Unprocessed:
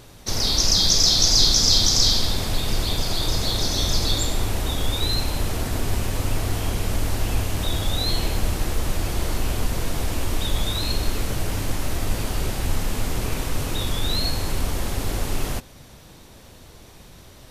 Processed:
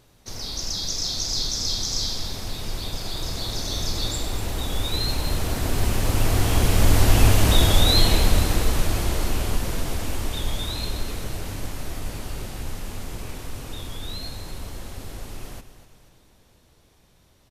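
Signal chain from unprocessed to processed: Doppler pass-by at 7.39, 6 m/s, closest 5.2 m; feedback echo 0.243 s, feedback 51%, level -13 dB; gain +7.5 dB

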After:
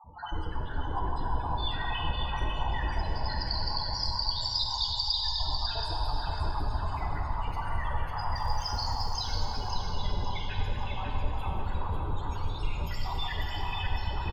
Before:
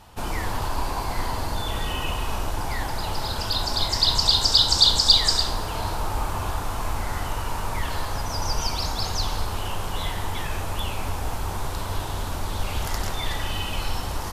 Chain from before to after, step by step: random spectral dropouts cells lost 56%; 12.3–12.78 inverse Chebyshev band-stop 210–420 Hz, stop band 80 dB; compressor, threshold -28 dBFS, peak gain reduction 13.5 dB; loudest bins only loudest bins 16; 8.32–9.16 crackle 160/s -43 dBFS; feedback echo 0.547 s, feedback 29%, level -5 dB; plate-style reverb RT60 3.1 s, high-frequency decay 0.75×, DRR -0.5 dB

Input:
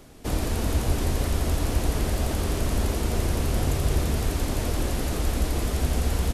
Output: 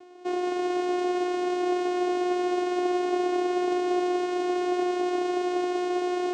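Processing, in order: on a send: split-band echo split 310 Hz, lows 0.689 s, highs 0.184 s, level -4 dB; on the sum: vocoder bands 4, saw 359 Hz; high shelf 5900 Hz -6 dB; gain +2.5 dB

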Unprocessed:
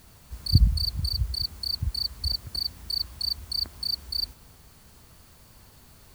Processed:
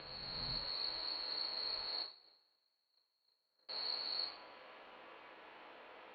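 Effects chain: spectral swells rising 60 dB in 1.94 s; 2.02–3.69 gate -18 dBFS, range -44 dB; mistuned SSB -170 Hz 550–3200 Hz; two-slope reverb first 0.37 s, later 1.7 s, from -25 dB, DRR -1 dB; gain -1 dB

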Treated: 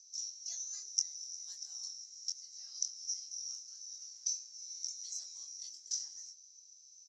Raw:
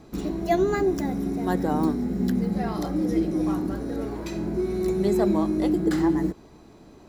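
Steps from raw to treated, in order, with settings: Butterworth band-pass 5800 Hz, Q 7.2; doubler 23 ms -5 dB; gain +15.5 dB

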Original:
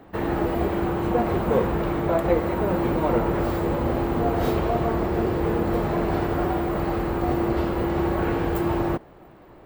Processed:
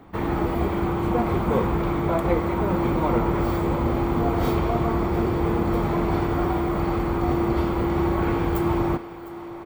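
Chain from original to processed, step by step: comb 0.9 ms, depth 34%; thinning echo 0.705 s, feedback 76%, high-pass 250 Hz, level -16 dB

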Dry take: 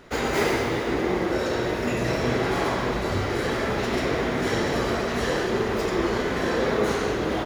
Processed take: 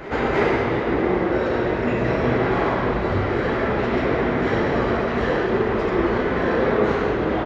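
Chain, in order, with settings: LPF 2300 Hz 12 dB/oct; reverse echo 0.317 s -15 dB; gain +4 dB

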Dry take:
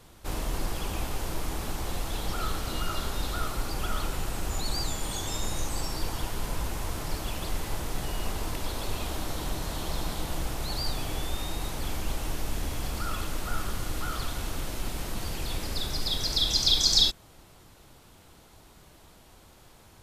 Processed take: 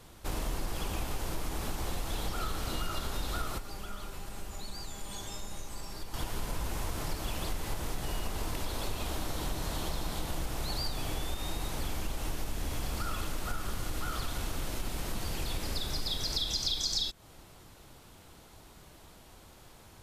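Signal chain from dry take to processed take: compressor 6:1, threshold -29 dBFS, peak gain reduction 12 dB; 3.58–6.14 resonator 200 Hz, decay 0.17 s, harmonics all, mix 70%

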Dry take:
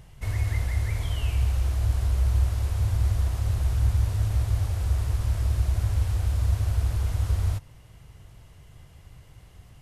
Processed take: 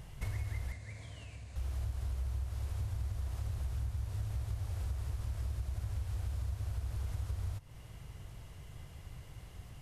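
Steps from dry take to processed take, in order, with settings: compressor 6:1, threshold -35 dBFS, peak gain reduction 16.5 dB; 0.72–1.56 speaker cabinet 140–8500 Hz, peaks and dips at 380 Hz -10 dB, 850 Hz -9 dB, 1300 Hz -9 dB, 3100 Hz -8 dB, 5500 Hz -5 dB

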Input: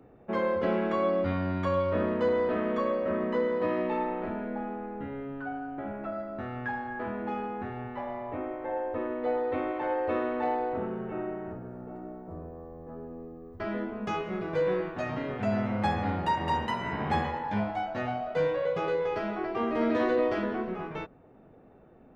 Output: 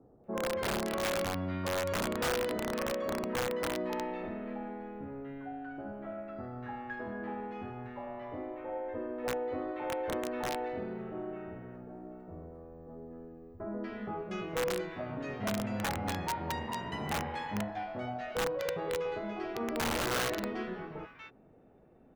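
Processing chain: bands offset in time lows, highs 0.24 s, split 1200 Hz; wrapped overs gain 21 dB; gain -5 dB

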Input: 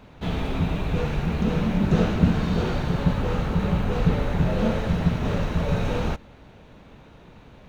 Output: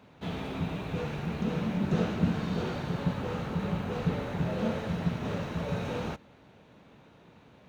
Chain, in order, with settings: HPF 110 Hz 12 dB/oct; gain -6.5 dB

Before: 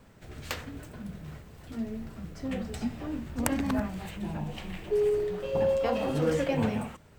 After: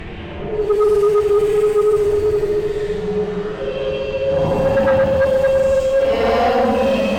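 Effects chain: low-pass opened by the level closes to 1600 Hz, open at -24 dBFS; Paulstretch 6×, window 0.10 s, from 4.81; sine folder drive 6 dB, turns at -14 dBFS; gain +3.5 dB

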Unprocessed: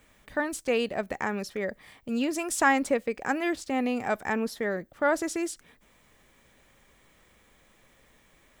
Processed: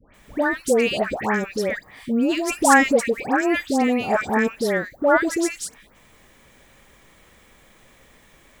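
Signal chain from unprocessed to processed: dispersion highs, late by 0.144 s, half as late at 1400 Hz; gain +8 dB

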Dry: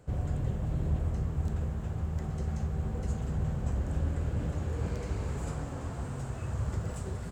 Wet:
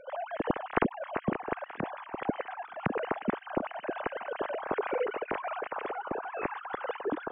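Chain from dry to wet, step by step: sine-wave speech; thinning echo 0.93 s, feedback 63%, high-pass 1100 Hz, level -17.5 dB; gain -2.5 dB

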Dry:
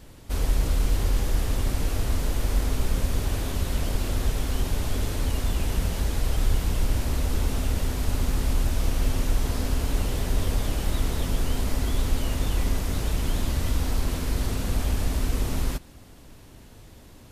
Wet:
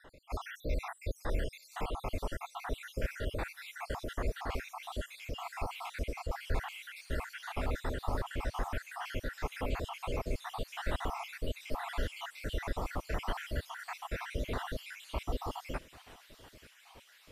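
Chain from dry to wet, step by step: random spectral dropouts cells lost 70%; vibrato 2.9 Hz 6.4 cents; three-band isolator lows -14 dB, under 480 Hz, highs -18 dB, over 2600 Hz; on a send: thin delay 0.898 s, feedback 81%, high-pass 3300 Hz, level -11 dB; on the sum: gain +4.5 dB

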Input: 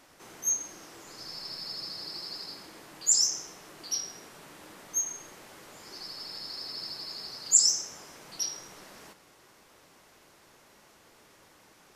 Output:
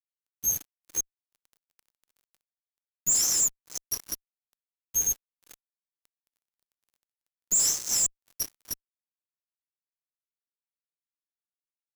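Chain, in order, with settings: reverse delay 0.252 s, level -2.5 dB; EQ curve 440 Hz 0 dB, 900 Hz -18 dB, 2000 Hz -12 dB, 3200 Hz -24 dB, 6800 Hz +3 dB, 10000 Hz +15 dB; fuzz box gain 29 dB, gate -32 dBFS; gain -7 dB

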